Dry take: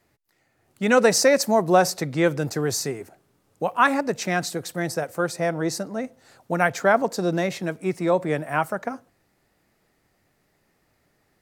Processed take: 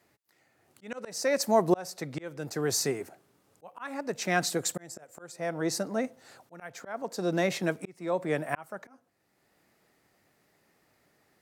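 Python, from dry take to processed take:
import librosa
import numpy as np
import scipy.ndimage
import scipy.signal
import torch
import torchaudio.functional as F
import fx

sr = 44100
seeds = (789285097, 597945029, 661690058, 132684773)

y = fx.peak_eq(x, sr, hz=7300.0, db=14.5, octaves=0.21, at=(4.59, 5.32))
y = fx.auto_swell(y, sr, attack_ms=714.0)
y = fx.highpass(y, sr, hz=170.0, slope=6)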